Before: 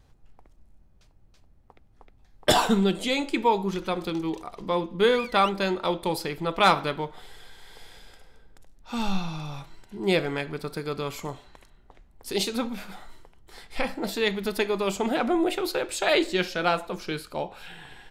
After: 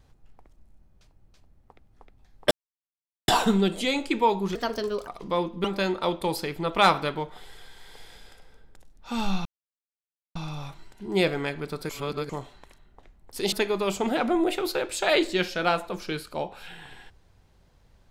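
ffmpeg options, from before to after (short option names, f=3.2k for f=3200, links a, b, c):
-filter_complex "[0:a]asplit=9[a][b][c][d][e][f][g][h][i];[a]atrim=end=2.51,asetpts=PTS-STARTPTS,afade=t=out:st=2.506:d=0.004:c=hsin,apad=pad_dur=0.77[j];[b]atrim=start=2.51:end=3.784,asetpts=PTS-STARTPTS,afade=t=in:d=0.004:c=hsin[k];[c]atrim=start=3.78:end=4.45,asetpts=PTS-STARTPTS,asetrate=56448,aresample=44100[l];[d]atrim=start=4.446:end=5.022[m];[e]atrim=start=5.458:end=9.27,asetpts=PTS-STARTPTS,afade=t=out:st=3.808:d=0.004:c=hsin,apad=pad_dur=0.9[n];[f]atrim=start=9.27:end=10.812,asetpts=PTS-STARTPTS,afade=t=in:d=0.004:c=hsin[o];[g]atrim=start=10.808:end=11.212,asetpts=PTS-STARTPTS,areverse[p];[h]atrim=start=11.208:end=12.442[q];[i]atrim=start=14.518[r];[j][k]concat=n=2:v=0:a=1[s];[s][l]acrossfade=d=0.004:c1=hsin:c2=hsin[t];[t][m]acrossfade=d=0.004:c1=hsin:c2=hsin[u];[n][o]concat=n=2:v=0:a=1[v];[u][v]acrossfade=d=0.004:c1=hsin:c2=hsin[w];[w][p]acrossfade=d=0.004:c1=hsin:c2=hsin[x];[x][q]acrossfade=d=0.004:c1=hsin:c2=hsin[y];[y][r]acrossfade=d=0.004:c1=hsin:c2=hsin"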